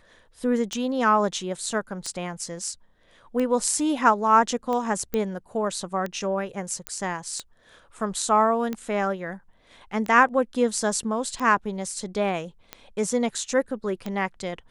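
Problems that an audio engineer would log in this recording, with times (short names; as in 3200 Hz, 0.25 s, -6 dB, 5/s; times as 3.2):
tick 45 rpm -17 dBFS
5.14 pop -13 dBFS
6.87 pop -13 dBFS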